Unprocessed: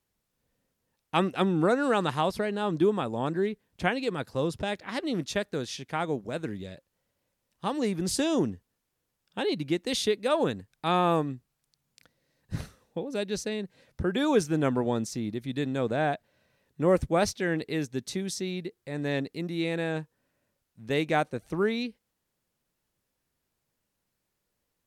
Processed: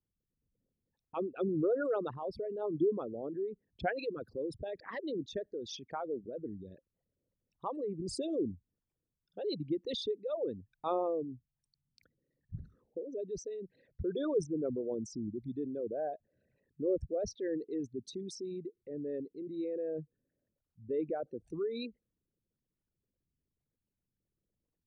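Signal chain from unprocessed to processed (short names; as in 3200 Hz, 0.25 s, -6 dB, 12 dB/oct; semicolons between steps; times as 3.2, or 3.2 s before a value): formant sharpening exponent 3; rotary speaker horn 1 Hz; gain -6 dB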